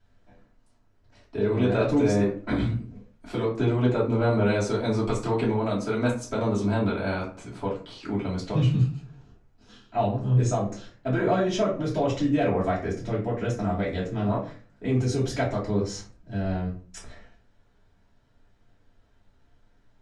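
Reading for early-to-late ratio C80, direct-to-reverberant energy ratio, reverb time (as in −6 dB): 12.5 dB, −9.0 dB, 0.40 s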